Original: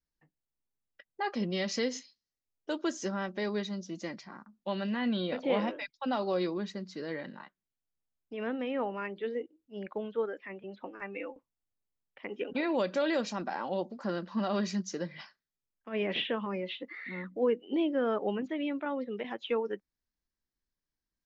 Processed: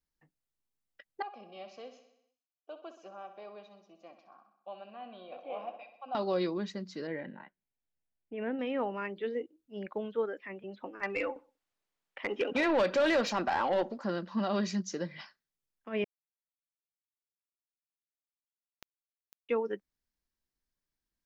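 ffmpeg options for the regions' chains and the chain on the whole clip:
-filter_complex "[0:a]asettb=1/sr,asplit=3[a][b][c];[a]atrim=end=1.224[d];[b]atrim=start=1.22:end=6.15,asetpts=PTS-STARTPTS,afade=t=in:d=0.004:c=qsin,afade=t=out:st=4.926:d=0.004:c=qsin,asplit=3[e][f][g];[e]bandpass=f=730:t=q:w=8,volume=0dB[h];[f]bandpass=f=1.09k:t=q:w=8,volume=-6dB[i];[g]bandpass=f=2.44k:t=q:w=8,volume=-9dB[j];[h][i][j]amix=inputs=3:normalize=0,aecho=1:1:64|128|192|256|320|384|448:0.282|0.169|0.101|0.0609|0.0365|0.0219|0.0131,atrim=end_sample=217413[k];[c]atrim=start=6.146[l];[d][k]acrossfade=d=0.004:c1=hsin:c2=qsin[m];[m][l]acrossfade=d=0.004:c1=qsin:c2=hsin,asettb=1/sr,asplit=3[n][o][p];[n]atrim=end=7.074[q];[o]atrim=start=7.07:end=8.59,asetpts=PTS-STARTPTS,afade=t=in:d=0.004:c=qsin,afade=t=out:st=1.516:d=0.004:c=qsin,lowpass=f=2.6k:w=0.5412,lowpass=f=2.6k:w=1.3066,equalizer=f=1.2k:t=o:w=0.29:g=-13.5[r];[p]atrim=start=8.586[s];[q][r]acrossfade=d=0.004:c1=hsin:c2=qsin[t];[t][s]acrossfade=d=0.004:c1=qsin:c2=hsin,asettb=1/sr,asplit=3[u][v][w];[u]atrim=end=11.034[x];[v]atrim=start=11.03:end=13.98,asetpts=PTS-STARTPTS,afade=t=in:d=0.004:c=qsin,afade=t=out:st=2.946:d=0.004:c=qsin,asplit=2[y][z];[z]highpass=f=720:p=1,volume=17dB,asoftclip=type=tanh:threshold=-19dB[aa];[y][aa]amix=inputs=2:normalize=0,lowpass=f=2.7k:p=1,volume=-6dB,asplit=2[ab][ac];[ac]adelay=63,lowpass=f=1.8k:p=1,volume=-23.5dB,asplit=2[ad][ae];[ae]adelay=63,lowpass=f=1.8k:p=1,volume=0.53,asplit=2[af][ag];[ag]adelay=63,lowpass=f=1.8k:p=1,volume=0.53[ah];[ab][ad][af][ah]amix=inputs=4:normalize=0,atrim=end_sample=130095[ai];[w]atrim=start=13.976[aj];[x][ai]acrossfade=d=0.004:c1=hsin:c2=qsin[ak];[ak][aj]acrossfade=d=0.004:c1=qsin:c2=hsin,asettb=1/sr,asplit=3[al][am][an];[al]atrim=end=16.044[ao];[am]atrim=start=16.04:end=19.49,asetpts=PTS-STARTPTS,afade=t=in:d=0.004:c=qsin,afade=t=out:st=3.446:d=0.004:c=qsin,lowpass=4.6k,acompressor=threshold=-44dB:ratio=6:attack=3.2:release=140:knee=1:detection=peak,acrusher=bits=3:dc=4:mix=0:aa=0.000001[ap];[an]atrim=start=19.486[aq];[ao][ap]acrossfade=d=0.004:c1=hsin:c2=qsin[ar];[ar][aq]acrossfade=d=0.004:c1=qsin:c2=hsin"

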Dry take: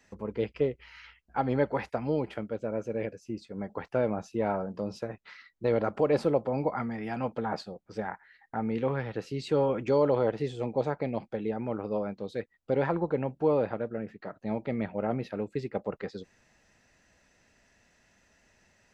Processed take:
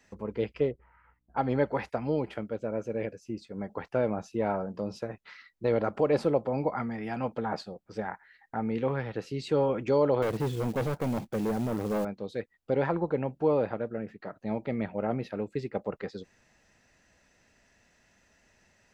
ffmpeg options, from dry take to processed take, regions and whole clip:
-filter_complex "[0:a]asettb=1/sr,asplit=3[a][b][c];[a]atrim=end=0.714[d];[b]atrim=start=0.71:end=1.37,asetpts=PTS-STARTPTS,afade=t=in:d=0.004:c=qsin,afade=t=out:st=0.656:d=0.004:c=qsin,lowpass=f=1.2k:w=0.5412,lowpass=f=1.2k:w=1.3066,aeval=exprs='val(0)+0.000141*(sin(2*PI*60*n/s)+sin(2*PI*2*60*n/s)/2+sin(2*PI*3*60*n/s)/3+sin(2*PI*4*60*n/s)/4+sin(2*PI*5*60*n/s)/5)':c=same[e];[c]atrim=start=1.366[f];[d][e]acrossfade=d=0.004:c1=hsin:c2=qsin[g];[g][f]acrossfade=d=0.004:c1=qsin:c2=hsin,asettb=1/sr,asplit=3[h][i][j];[h]atrim=end=10.224[k];[i]atrim=start=10.22:end=12.05,asetpts=PTS-STARTPTS,afade=t=in:d=0.004:c=qsin,afade=t=out:st=1.826:d=0.004:c=qsin,lowshelf=f=410:g=9.5,acrusher=bits=4:mode=log:mix=0:aa=0.000001,asoftclip=type=hard:threshold=-25dB[l];[j]atrim=start=12.046[m];[k][l]acrossfade=d=0.004:c1=hsin:c2=qsin[n];[n][m]acrossfade=d=0.004:c1=qsin:c2=hsin"

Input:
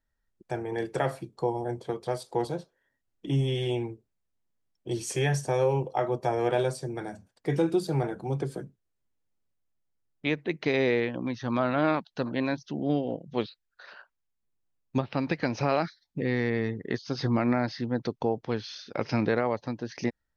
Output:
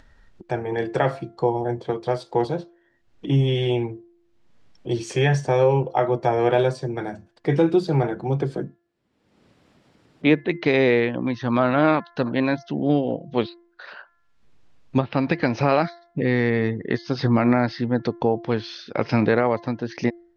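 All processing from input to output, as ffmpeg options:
-filter_complex "[0:a]asettb=1/sr,asplit=3[a][b][c];[a]atrim=end=8.584[d];[b]atrim=start=8.58:end=10.44,asetpts=PTS-STARTPTS,afade=t=in:d=0.004:c=qsin,afade=t=out:st=1.856:d=0.004:c=qsin,highpass=f=140:p=1,equalizer=f=250:t=o:w=2.3:g=7,bandreject=f=6.3k:w=12[e];[c]atrim=start=10.436[f];[d][e]acrossfade=d=0.004:c1=hsin:c2=qsin[g];[g][f]acrossfade=d=0.004:c1=qsin:c2=hsin,lowpass=4.3k,bandreject=f=343.9:t=h:w=4,bandreject=f=687.8:t=h:w=4,bandreject=f=1.0317k:t=h:w=4,bandreject=f=1.3756k:t=h:w=4,bandreject=f=1.7195k:t=h:w=4,bandreject=f=2.0634k:t=h:w=4,acompressor=mode=upward:threshold=-43dB:ratio=2.5,volume=7dB"

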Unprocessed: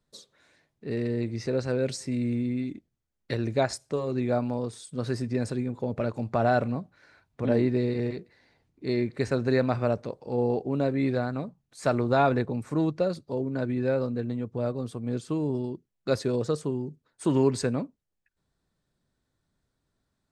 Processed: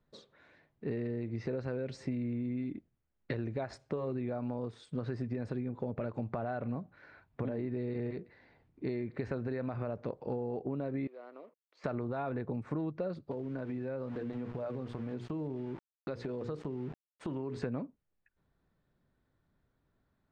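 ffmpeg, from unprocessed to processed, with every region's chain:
-filter_complex "[0:a]asettb=1/sr,asplit=3[a][b][c];[a]atrim=end=11.074[d];[b]atrim=start=11.07:end=11.84,asetpts=PTS-STARTPTS,afade=t=in:d=0.004:c=qsin,afade=t=out:st=0.766:d=0.004:c=qsin,acompressor=threshold=-44dB:ratio=3:attack=3.2:release=140:knee=1:detection=peak,aeval=exprs='sgn(val(0))*max(abs(val(0))-0.00106,0)':c=same,highpass=f=370:w=0.5412,highpass=f=370:w=1.3066,equalizer=f=800:t=q:w=4:g=-7,equalizer=f=1.6k:t=q:w=4:g=-9,equalizer=f=3.8k:t=q:w=4:g=-5,lowpass=f=5.5k:w=0.5412,lowpass=f=5.5k:w=1.3066[e];[c]atrim=start=11.836[f];[d][e]acrossfade=d=0.004:c1=hsin:c2=qsin[g];[g][f]acrossfade=d=0.004:c1=qsin:c2=hsin,asettb=1/sr,asplit=3[h][i][j];[h]atrim=end=13.314[k];[i]atrim=start=13.31:end=17.62,asetpts=PTS-STARTPTS,afade=t=in:d=0.004:c=qsin,afade=t=out:st=4.306:d=0.004:c=qsin,bandreject=f=60:t=h:w=6,bandreject=f=120:t=h:w=6,bandreject=f=180:t=h:w=6,bandreject=f=240:t=h:w=6,bandreject=f=300:t=h:w=6,bandreject=f=360:t=h:w=6,bandreject=f=420:t=h:w=6,bandreject=f=480:t=h:w=6,aeval=exprs='val(0)*gte(abs(val(0)),0.00668)':c=same,acompressor=threshold=-36dB:ratio=6:attack=3.2:release=140:knee=1:detection=peak[l];[j]atrim=start=17.616[m];[k][l]acrossfade=d=0.004:c1=hsin:c2=qsin[n];[n][m]acrossfade=d=0.004:c1=qsin:c2=hsin,lowpass=2.4k,alimiter=limit=-20dB:level=0:latency=1:release=87,acompressor=threshold=-34dB:ratio=10,volume=2dB"

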